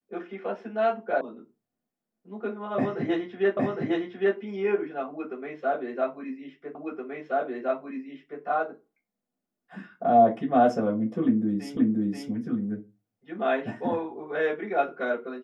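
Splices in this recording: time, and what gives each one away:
1.21 s: sound stops dead
3.57 s: repeat of the last 0.81 s
6.75 s: repeat of the last 1.67 s
11.77 s: repeat of the last 0.53 s

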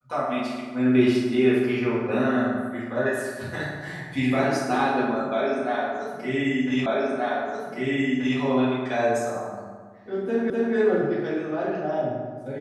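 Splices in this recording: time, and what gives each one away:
6.86 s: repeat of the last 1.53 s
10.50 s: repeat of the last 0.25 s

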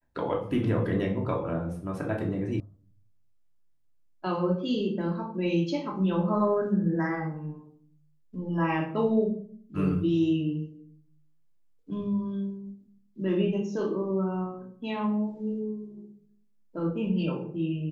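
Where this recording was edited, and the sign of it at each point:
2.60 s: sound stops dead

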